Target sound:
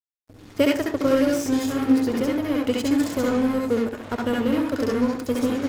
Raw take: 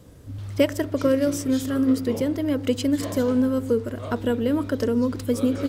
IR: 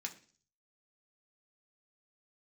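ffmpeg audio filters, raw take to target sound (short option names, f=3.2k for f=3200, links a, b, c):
-filter_complex "[0:a]aeval=exprs='sgn(val(0))*max(abs(val(0))-0.0237,0)':c=same,asplit=2[a][b];[1:a]atrim=start_sample=2205,adelay=66[c];[b][c]afir=irnorm=-1:irlink=0,volume=3.5dB[d];[a][d]amix=inputs=2:normalize=0"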